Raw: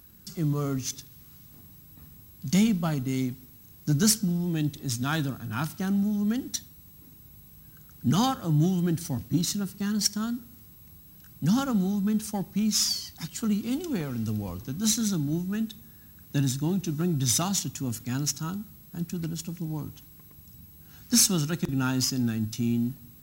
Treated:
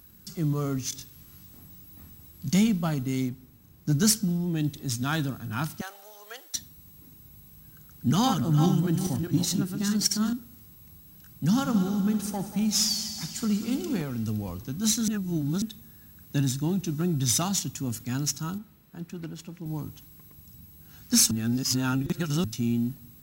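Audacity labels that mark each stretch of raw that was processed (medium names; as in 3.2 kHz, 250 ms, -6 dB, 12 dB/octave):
0.900000	2.490000	doubling 23 ms -3.5 dB
3.290000	4.640000	tape noise reduction on one side only decoder only
5.810000	6.550000	steep high-pass 510 Hz
8.050000	10.330000	backward echo that repeats 204 ms, feedback 42%, level -5 dB
11.440000	14.020000	multi-head delay 63 ms, heads first and third, feedback 68%, level -13 dB
15.080000	15.620000	reverse
18.580000	19.660000	tone controls bass -8 dB, treble -11 dB
21.310000	22.440000	reverse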